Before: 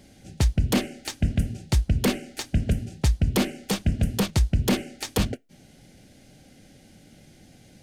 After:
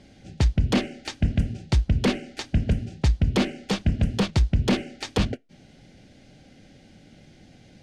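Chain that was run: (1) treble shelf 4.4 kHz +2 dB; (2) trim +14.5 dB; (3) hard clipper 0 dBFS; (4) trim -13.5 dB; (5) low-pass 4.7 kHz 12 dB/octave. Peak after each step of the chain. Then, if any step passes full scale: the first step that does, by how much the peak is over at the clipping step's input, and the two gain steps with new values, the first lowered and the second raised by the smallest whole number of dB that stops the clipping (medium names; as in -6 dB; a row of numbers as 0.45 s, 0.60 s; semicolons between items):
-11.5 dBFS, +3.0 dBFS, 0.0 dBFS, -13.5 dBFS, -13.0 dBFS; step 2, 3.0 dB; step 2 +11.5 dB, step 4 -10.5 dB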